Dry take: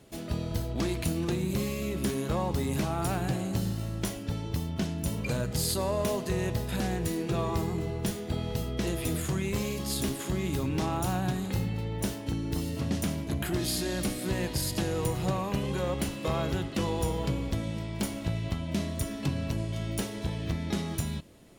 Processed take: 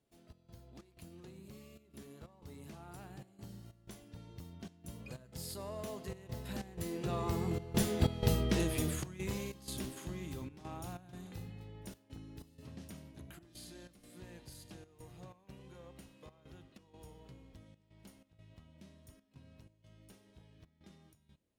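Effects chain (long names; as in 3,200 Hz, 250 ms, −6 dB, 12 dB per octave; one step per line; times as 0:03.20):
source passing by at 0:08.13, 12 m/s, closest 3.9 metres
gate pattern "xx.xx.xxx" 93 BPM −12 dB
level +3.5 dB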